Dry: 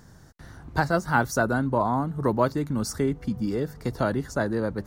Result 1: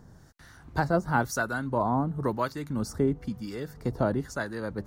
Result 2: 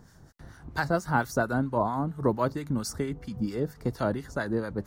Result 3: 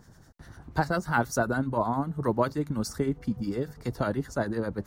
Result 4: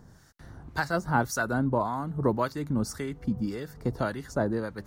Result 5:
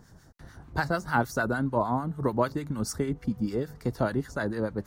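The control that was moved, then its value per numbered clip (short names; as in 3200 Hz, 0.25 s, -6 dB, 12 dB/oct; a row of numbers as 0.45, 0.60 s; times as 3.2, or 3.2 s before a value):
harmonic tremolo, rate: 1, 4.4, 10, 1.8, 6.7 Hz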